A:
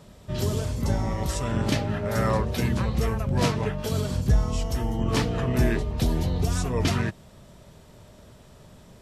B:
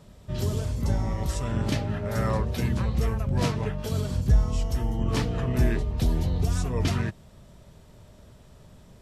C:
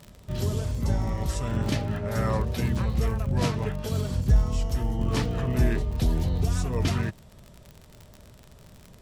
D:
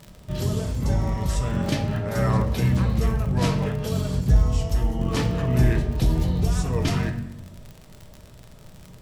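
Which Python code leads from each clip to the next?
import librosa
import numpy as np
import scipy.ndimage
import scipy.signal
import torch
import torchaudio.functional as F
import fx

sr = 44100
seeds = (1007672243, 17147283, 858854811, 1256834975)

y1 = fx.low_shelf(x, sr, hz=120.0, db=6.5)
y1 = y1 * 10.0 ** (-4.0 / 20.0)
y2 = fx.dmg_crackle(y1, sr, seeds[0], per_s=54.0, level_db=-34.0)
y3 = fx.room_shoebox(y2, sr, seeds[1], volume_m3=350.0, walls='mixed', distance_m=0.6)
y3 = y3 * 10.0 ** (2.0 / 20.0)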